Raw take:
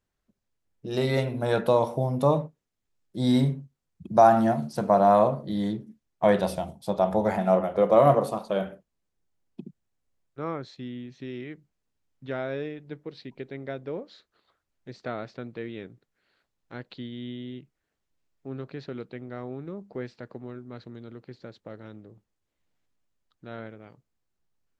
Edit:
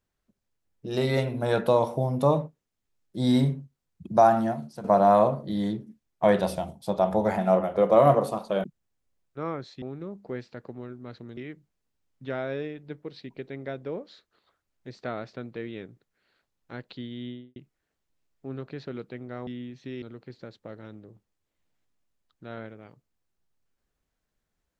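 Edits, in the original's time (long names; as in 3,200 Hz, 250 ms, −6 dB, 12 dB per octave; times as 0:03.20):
0:04.08–0:04.84: fade out, to −12 dB
0:08.64–0:09.65: remove
0:10.83–0:11.38: swap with 0:19.48–0:21.03
0:17.26–0:17.57: fade out and dull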